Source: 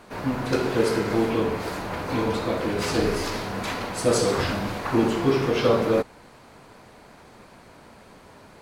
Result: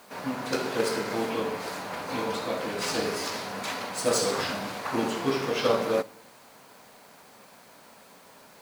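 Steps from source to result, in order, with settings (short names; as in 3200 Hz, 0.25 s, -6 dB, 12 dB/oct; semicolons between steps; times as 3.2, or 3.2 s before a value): median filter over 3 samples; HPF 160 Hz 12 dB/oct; bell 350 Hz -7 dB 0.4 oct; added harmonics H 3 -20 dB, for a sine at -9 dBFS; tone controls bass -4 dB, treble +5 dB; requantised 10-bit, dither triangular; on a send: reverb RT60 0.70 s, pre-delay 5 ms, DRR 16.5 dB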